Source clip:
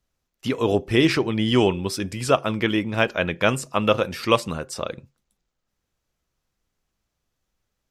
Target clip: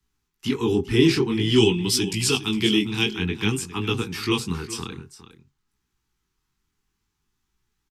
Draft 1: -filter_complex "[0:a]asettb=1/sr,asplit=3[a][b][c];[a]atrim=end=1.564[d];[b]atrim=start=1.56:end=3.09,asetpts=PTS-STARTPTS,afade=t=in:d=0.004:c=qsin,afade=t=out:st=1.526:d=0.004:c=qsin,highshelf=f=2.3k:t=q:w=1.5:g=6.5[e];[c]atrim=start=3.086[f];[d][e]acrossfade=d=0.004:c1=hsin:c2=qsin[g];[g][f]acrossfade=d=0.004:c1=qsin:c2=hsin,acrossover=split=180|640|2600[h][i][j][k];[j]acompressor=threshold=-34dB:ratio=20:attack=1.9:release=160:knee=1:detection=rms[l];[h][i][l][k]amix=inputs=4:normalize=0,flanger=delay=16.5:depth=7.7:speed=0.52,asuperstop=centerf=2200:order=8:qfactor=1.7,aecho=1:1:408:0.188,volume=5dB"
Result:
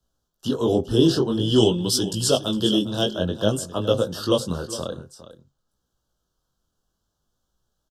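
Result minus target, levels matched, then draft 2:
2000 Hz band -11.5 dB
-filter_complex "[0:a]asettb=1/sr,asplit=3[a][b][c];[a]atrim=end=1.564[d];[b]atrim=start=1.56:end=3.09,asetpts=PTS-STARTPTS,afade=t=in:d=0.004:c=qsin,afade=t=out:st=1.526:d=0.004:c=qsin,highshelf=f=2.3k:t=q:w=1.5:g=6.5[e];[c]atrim=start=3.086[f];[d][e]acrossfade=d=0.004:c1=hsin:c2=qsin[g];[g][f]acrossfade=d=0.004:c1=qsin:c2=hsin,acrossover=split=180|640|2600[h][i][j][k];[j]acompressor=threshold=-34dB:ratio=20:attack=1.9:release=160:knee=1:detection=rms[l];[h][i][l][k]amix=inputs=4:normalize=0,flanger=delay=16.5:depth=7.7:speed=0.52,asuperstop=centerf=590:order=8:qfactor=1.7,aecho=1:1:408:0.188,volume=5dB"

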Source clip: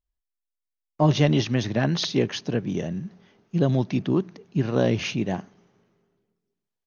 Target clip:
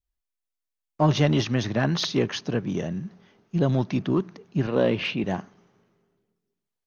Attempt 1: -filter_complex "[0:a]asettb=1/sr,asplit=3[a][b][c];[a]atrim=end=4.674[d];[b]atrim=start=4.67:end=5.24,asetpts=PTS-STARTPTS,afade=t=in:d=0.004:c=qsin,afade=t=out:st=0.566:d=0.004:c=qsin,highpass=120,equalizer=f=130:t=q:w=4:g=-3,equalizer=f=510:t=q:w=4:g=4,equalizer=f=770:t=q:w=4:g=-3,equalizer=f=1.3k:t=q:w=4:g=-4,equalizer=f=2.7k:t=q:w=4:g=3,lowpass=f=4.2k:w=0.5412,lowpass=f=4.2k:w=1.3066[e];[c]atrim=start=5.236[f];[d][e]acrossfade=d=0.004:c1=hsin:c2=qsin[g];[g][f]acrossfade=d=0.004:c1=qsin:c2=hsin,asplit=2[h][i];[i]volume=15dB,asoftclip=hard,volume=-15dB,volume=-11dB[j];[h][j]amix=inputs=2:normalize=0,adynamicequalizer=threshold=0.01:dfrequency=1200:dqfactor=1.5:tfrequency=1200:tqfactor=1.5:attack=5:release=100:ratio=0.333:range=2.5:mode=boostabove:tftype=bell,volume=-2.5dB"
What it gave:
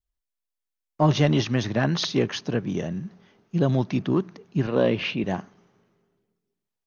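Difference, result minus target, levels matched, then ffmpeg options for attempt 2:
overloaded stage: distortion -8 dB
-filter_complex "[0:a]asettb=1/sr,asplit=3[a][b][c];[a]atrim=end=4.674[d];[b]atrim=start=4.67:end=5.24,asetpts=PTS-STARTPTS,afade=t=in:d=0.004:c=qsin,afade=t=out:st=0.566:d=0.004:c=qsin,highpass=120,equalizer=f=130:t=q:w=4:g=-3,equalizer=f=510:t=q:w=4:g=4,equalizer=f=770:t=q:w=4:g=-3,equalizer=f=1.3k:t=q:w=4:g=-4,equalizer=f=2.7k:t=q:w=4:g=3,lowpass=f=4.2k:w=0.5412,lowpass=f=4.2k:w=1.3066[e];[c]atrim=start=5.236[f];[d][e]acrossfade=d=0.004:c1=hsin:c2=qsin[g];[g][f]acrossfade=d=0.004:c1=qsin:c2=hsin,asplit=2[h][i];[i]volume=21.5dB,asoftclip=hard,volume=-21.5dB,volume=-11dB[j];[h][j]amix=inputs=2:normalize=0,adynamicequalizer=threshold=0.01:dfrequency=1200:dqfactor=1.5:tfrequency=1200:tqfactor=1.5:attack=5:release=100:ratio=0.333:range=2.5:mode=boostabove:tftype=bell,volume=-2.5dB"

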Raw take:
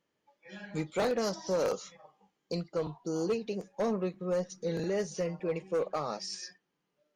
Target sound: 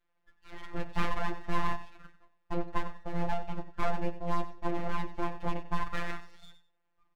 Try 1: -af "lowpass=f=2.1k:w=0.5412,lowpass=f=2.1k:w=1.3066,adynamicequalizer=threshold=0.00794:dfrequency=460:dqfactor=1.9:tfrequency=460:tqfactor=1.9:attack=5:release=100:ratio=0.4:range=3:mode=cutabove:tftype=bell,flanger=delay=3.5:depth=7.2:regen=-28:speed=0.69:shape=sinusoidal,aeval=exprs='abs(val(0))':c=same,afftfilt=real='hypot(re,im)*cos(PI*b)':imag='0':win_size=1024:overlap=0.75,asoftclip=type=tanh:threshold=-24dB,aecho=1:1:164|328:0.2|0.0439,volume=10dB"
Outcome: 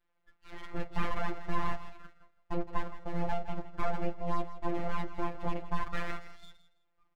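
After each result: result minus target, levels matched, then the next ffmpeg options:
echo 70 ms late; soft clip: distortion +18 dB
-af "lowpass=f=2.1k:w=0.5412,lowpass=f=2.1k:w=1.3066,adynamicequalizer=threshold=0.00794:dfrequency=460:dqfactor=1.9:tfrequency=460:tqfactor=1.9:attack=5:release=100:ratio=0.4:range=3:mode=cutabove:tftype=bell,flanger=delay=3.5:depth=7.2:regen=-28:speed=0.69:shape=sinusoidal,aeval=exprs='abs(val(0))':c=same,afftfilt=real='hypot(re,im)*cos(PI*b)':imag='0':win_size=1024:overlap=0.75,asoftclip=type=tanh:threshold=-24dB,aecho=1:1:94|188:0.2|0.0439,volume=10dB"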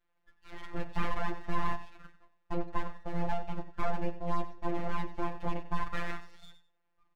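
soft clip: distortion +18 dB
-af "lowpass=f=2.1k:w=0.5412,lowpass=f=2.1k:w=1.3066,adynamicequalizer=threshold=0.00794:dfrequency=460:dqfactor=1.9:tfrequency=460:tqfactor=1.9:attack=5:release=100:ratio=0.4:range=3:mode=cutabove:tftype=bell,flanger=delay=3.5:depth=7.2:regen=-28:speed=0.69:shape=sinusoidal,aeval=exprs='abs(val(0))':c=same,afftfilt=real='hypot(re,im)*cos(PI*b)':imag='0':win_size=1024:overlap=0.75,asoftclip=type=tanh:threshold=-14dB,aecho=1:1:94|188:0.2|0.0439,volume=10dB"

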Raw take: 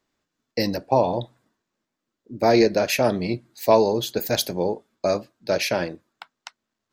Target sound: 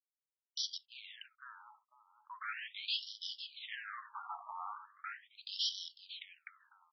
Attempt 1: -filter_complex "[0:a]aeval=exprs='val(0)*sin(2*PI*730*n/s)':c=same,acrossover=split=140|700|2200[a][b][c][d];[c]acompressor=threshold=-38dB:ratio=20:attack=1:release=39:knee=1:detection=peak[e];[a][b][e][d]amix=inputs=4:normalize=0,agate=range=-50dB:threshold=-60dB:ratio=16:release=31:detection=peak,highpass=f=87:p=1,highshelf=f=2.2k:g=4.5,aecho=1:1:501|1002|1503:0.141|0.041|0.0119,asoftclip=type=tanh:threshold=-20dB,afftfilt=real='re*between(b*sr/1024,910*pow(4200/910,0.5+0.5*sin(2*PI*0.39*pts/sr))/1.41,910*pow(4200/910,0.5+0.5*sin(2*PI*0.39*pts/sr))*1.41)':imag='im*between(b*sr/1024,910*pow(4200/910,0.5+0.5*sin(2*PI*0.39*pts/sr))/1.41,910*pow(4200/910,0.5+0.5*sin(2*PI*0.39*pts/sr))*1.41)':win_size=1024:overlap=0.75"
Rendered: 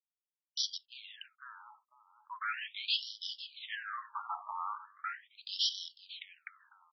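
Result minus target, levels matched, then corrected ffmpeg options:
compressor: peak gain reduction -7.5 dB; soft clip: distortion -7 dB
-filter_complex "[0:a]aeval=exprs='val(0)*sin(2*PI*730*n/s)':c=same,acrossover=split=140|700|2200[a][b][c][d];[c]acompressor=threshold=-46dB:ratio=20:attack=1:release=39:knee=1:detection=peak[e];[a][b][e][d]amix=inputs=4:normalize=0,agate=range=-50dB:threshold=-60dB:ratio=16:release=31:detection=peak,highpass=f=87:p=1,highshelf=f=2.2k:g=4.5,aecho=1:1:501|1002|1503:0.141|0.041|0.0119,asoftclip=type=tanh:threshold=-28dB,afftfilt=real='re*between(b*sr/1024,910*pow(4200/910,0.5+0.5*sin(2*PI*0.39*pts/sr))/1.41,910*pow(4200/910,0.5+0.5*sin(2*PI*0.39*pts/sr))*1.41)':imag='im*between(b*sr/1024,910*pow(4200/910,0.5+0.5*sin(2*PI*0.39*pts/sr))/1.41,910*pow(4200/910,0.5+0.5*sin(2*PI*0.39*pts/sr))*1.41)':win_size=1024:overlap=0.75"

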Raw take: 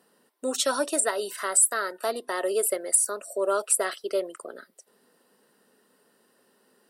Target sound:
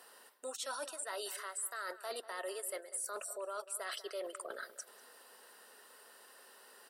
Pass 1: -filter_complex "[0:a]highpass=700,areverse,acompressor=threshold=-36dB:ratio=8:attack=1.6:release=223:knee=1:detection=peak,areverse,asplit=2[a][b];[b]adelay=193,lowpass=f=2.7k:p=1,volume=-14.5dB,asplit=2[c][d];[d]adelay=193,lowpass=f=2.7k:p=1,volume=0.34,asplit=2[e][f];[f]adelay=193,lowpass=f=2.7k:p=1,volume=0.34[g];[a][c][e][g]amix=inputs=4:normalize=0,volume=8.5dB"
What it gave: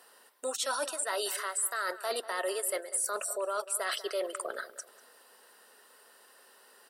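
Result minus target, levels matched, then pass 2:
compressor: peak gain reduction -8.5 dB
-filter_complex "[0:a]highpass=700,areverse,acompressor=threshold=-46dB:ratio=8:attack=1.6:release=223:knee=1:detection=peak,areverse,asplit=2[a][b];[b]adelay=193,lowpass=f=2.7k:p=1,volume=-14.5dB,asplit=2[c][d];[d]adelay=193,lowpass=f=2.7k:p=1,volume=0.34,asplit=2[e][f];[f]adelay=193,lowpass=f=2.7k:p=1,volume=0.34[g];[a][c][e][g]amix=inputs=4:normalize=0,volume=8.5dB"

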